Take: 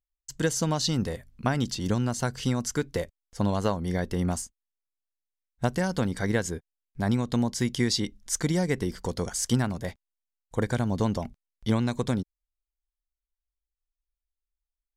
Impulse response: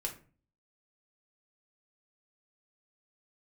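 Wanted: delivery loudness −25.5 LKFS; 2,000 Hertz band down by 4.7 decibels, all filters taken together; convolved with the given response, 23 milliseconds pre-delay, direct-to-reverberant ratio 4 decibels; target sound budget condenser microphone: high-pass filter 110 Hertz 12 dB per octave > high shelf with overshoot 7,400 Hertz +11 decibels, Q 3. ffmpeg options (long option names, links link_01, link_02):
-filter_complex "[0:a]equalizer=frequency=2000:width_type=o:gain=-5.5,asplit=2[link_01][link_02];[1:a]atrim=start_sample=2205,adelay=23[link_03];[link_02][link_03]afir=irnorm=-1:irlink=0,volume=-5dB[link_04];[link_01][link_04]amix=inputs=2:normalize=0,highpass=110,highshelf=frequency=7400:width_type=q:width=3:gain=11"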